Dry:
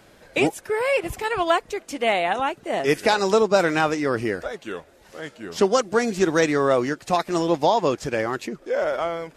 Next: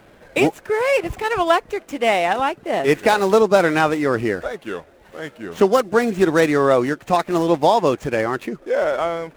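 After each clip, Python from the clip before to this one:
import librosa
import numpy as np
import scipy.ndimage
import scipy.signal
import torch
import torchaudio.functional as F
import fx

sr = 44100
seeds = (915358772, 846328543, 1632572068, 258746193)

y = scipy.signal.medfilt(x, 9)
y = y * 10.0 ** (4.0 / 20.0)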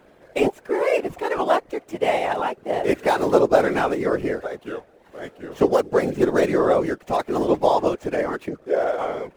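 y = fx.whisperise(x, sr, seeds[0])
y = fx.peak_eq(y, sr, hz=480.0, db=6.0, octaves=1.9)
y = y * 10.0 ** (-7.5 / 20.0)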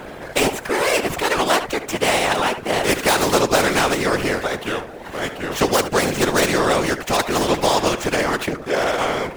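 y = x + 10.0 ** (-18.5 / 20.0) * np.pad(x, (int(73 * sr / 1000.0), 0))[:len(x)]
y = fx.spectral_comp(y, sr, ratio=2.0)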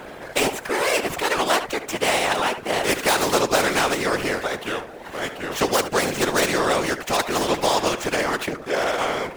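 y = fx.low_shelf(x, sr, hz=240.0, db=-5.5)
y = y * 10.0 ** (-2.0 / 20.0)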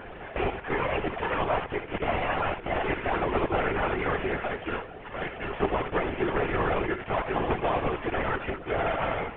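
y = fx.cvsd(x, sr, bps=16000)
y = y + 0.65 * np.pad(y, (int(2.9 * sr / 1000.0), 0))[:len(y)]
y = fx.lpc_vocoder(y, sr, seeds[1], excitation='whisper', order=16)
y = y * 10.0 ** (-5.0 / 20.0)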